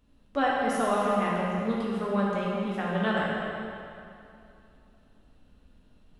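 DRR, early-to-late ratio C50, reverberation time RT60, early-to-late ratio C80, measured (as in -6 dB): -6.0 dB, -2.5 dB, 2.7 s, -1.0 dB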